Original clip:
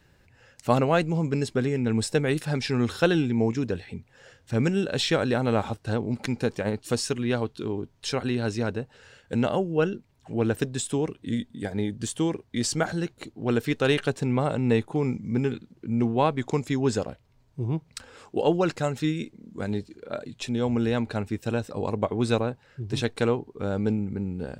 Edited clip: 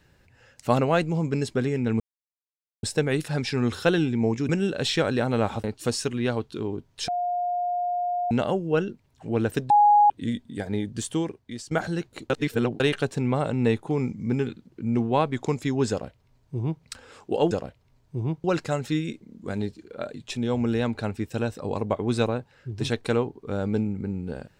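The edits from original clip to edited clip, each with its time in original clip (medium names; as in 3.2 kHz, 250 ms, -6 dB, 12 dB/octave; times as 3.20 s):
2.00 s: insert silence 0.83 s
3.66–4.63 s: delete
5.78–6.69 s: delete
8.13–9.36 s: bleep 710 Hz -23.5 dBFS
10.75–11.15 s: bleep 829 Hz -13 dBFS
12.17–12.76 s: fade out, to -20 dB
13.35–13.85 s: reverse
16.95–17.88 s: copy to 18.56 s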